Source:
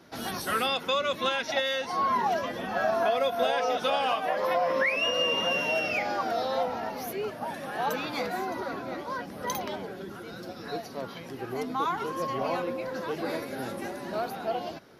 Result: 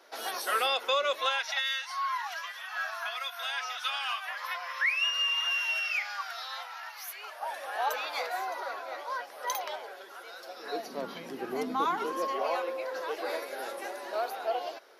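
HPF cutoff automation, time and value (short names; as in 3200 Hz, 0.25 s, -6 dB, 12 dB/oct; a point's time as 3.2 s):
HPF 24 dB/oct
1.11 s 440 Hz
1.65 s 1200 Hz
7.05 s 1200 Hz
7.53 s 570 Hz
10.46 s 570 Hz
10.98 s 190 Hz
11.87 s 190 Hz
12.5 s 440 Hz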